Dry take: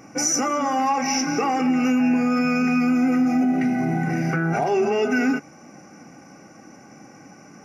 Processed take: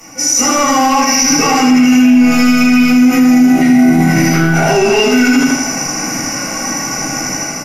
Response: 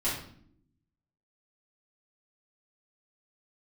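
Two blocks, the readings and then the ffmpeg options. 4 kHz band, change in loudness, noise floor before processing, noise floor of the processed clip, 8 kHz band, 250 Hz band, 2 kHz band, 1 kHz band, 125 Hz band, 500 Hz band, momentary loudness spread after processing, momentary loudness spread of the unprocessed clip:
+17.0 dB, +11.0 dB, -47 dBFS, -20 dBFS, +15.0 dB, +12.0 dB, +12.5 dB, +9.5 dB, +11.0 dB, +9.0 dB, 9 LU, 4 LU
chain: -filter_complex "[0:a]acrossover=split=520|790[s0][s1][s2];[s0]aeval=exprs='sgn(val(0))*max(abs(val(0))-0.00211,0)':c=same[s3];[s3][s1][s2]amix=inputs=3:normalize=0,bandreject=f=360:w=12,crystalizer=i=5.5:c=0,areverse,acompressor=threshold=0.0355:ratio=5,areverse,asoftclip=type=tanh:threshold=0.0562,dynaudnorm=f=160:g=5:m=1.58,aresample=32000,aresample=44100,aecho=1:1:80|160|240|320|400|480:0.631|0.29|0.134|0.0614|0.0283|0.013[s4];[1:a]atrim=start_sample=2205,afade=t=out:st=0.14:d=0.01,atrim=end_sample=6615[s5];[s4][s5]afir=irnorm=-1:irlink=0,alimiter=level_in=3.98:limit=0.891:release=50:level=0:latency=1,volume=0.891"

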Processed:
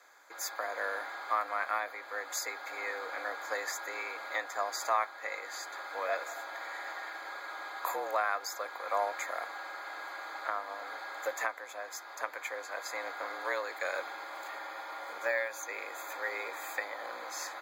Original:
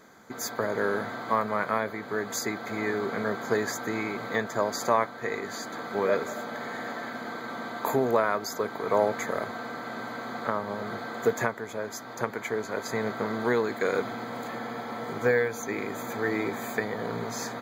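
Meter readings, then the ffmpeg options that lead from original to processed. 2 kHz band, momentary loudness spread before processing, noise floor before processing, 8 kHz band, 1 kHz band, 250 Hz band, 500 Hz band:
-3.0 dB, 10 LU, -41 dBFS, -3.5 dB, -4.0 dB, -24.5 dB, -11.5 dB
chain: -af "highpass=690,afreqshift=81,volume=0.668"

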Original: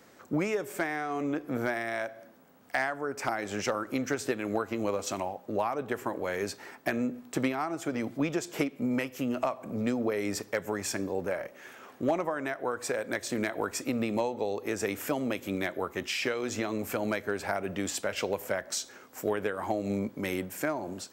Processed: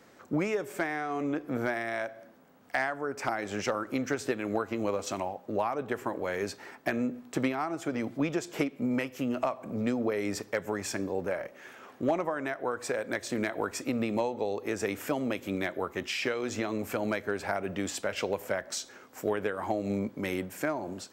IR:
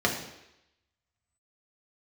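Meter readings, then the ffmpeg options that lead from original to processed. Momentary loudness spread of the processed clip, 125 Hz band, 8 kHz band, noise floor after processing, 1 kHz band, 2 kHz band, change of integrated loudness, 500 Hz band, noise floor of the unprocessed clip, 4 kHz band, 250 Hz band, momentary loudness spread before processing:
4 LU, 0.0 dB, -3.0 dB, -55 dBFS, 0.0 dB, -0.5 dB, 0.0 dB, 0.0 dB, -55 dBFS, -1.5 dB, 0.0 dB, 4 LU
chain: -af "highshelf=f=7300:g=-6"

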